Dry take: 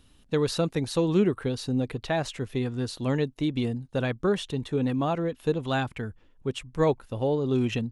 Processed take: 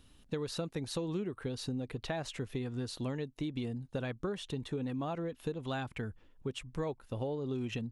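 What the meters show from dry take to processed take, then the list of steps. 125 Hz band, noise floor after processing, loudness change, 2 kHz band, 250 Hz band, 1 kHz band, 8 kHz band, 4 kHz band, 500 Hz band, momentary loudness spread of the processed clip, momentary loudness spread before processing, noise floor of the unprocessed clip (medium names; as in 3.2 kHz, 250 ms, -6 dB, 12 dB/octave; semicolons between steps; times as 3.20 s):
-9.5 dB, -63 dBFS, -10.5 dB, -9.5 dB, -10.5 dB, -11.0 dB, -7.0 dB, -8.0 dB, -11.5 dB, 4 LU, 6 LU, -59 dBFS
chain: compression, threshold -31 dBFS, peak gain reduction 13.5 dB; trim -2.5 dB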